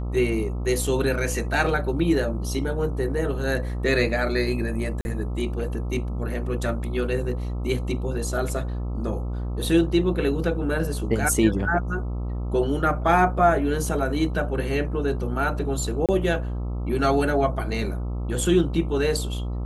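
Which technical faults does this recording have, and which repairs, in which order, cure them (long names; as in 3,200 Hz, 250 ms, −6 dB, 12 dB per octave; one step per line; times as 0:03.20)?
mains buzz 60 Hz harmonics 22 −28 dBFS
0:05.01–0:05.05: drop-out 41 ms
0:16.06–0:16.09: drop-out 27 ms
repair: hum removal 60 Hz, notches 22
repair the gap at 0:05.01, 41 ms
repair the gap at 0:16.06, 27 ms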